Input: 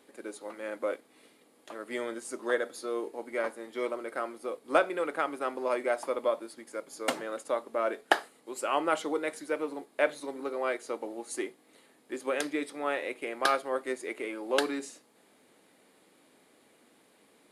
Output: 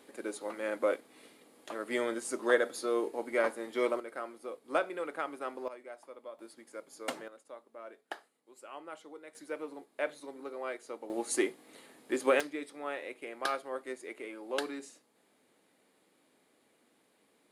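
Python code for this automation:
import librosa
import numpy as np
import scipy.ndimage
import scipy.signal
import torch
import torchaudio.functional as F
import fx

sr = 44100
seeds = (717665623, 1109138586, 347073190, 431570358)

y = fx.gain(x, sr, db=fx.steps((0.0, 2.5), (4.0, -6.0), (5.68, -18.0), (6.39, -7.0), (7.28, -18.0), (9.35, -7.5), (11.1, 5.0), (12.4, -7.0)))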